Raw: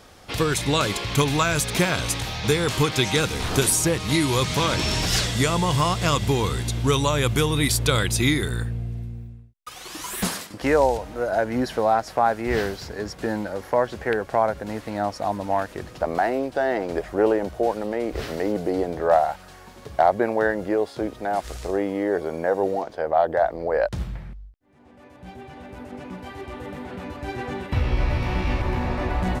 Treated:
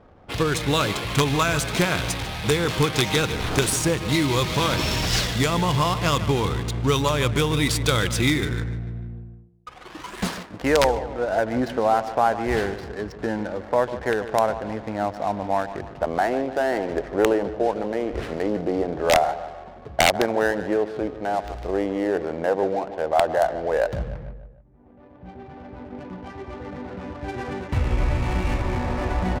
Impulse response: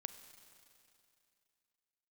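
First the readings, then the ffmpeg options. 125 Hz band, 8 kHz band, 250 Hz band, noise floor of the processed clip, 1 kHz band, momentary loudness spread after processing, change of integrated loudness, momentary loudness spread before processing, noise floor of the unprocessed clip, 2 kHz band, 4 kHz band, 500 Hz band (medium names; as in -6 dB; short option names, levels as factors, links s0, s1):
0.0 dB, -2.5 dB, +0.5 dB, -45 dBFS, 0.0 dB, 14 LU, 0.0 dB, 15 LU, -46 dBFS, +1.0 dB, 0.0 dB, 0.0 dB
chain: -af "aecho=1:1:149|298|447|596|745:0.224|0.116|0.0605|0.0315|0.0164,aeval=exprs='(mod(2.51*val(0)+1,2)-1)/2.51':c=same,adynamicsmooth=sensitivity=8:basefreq=730"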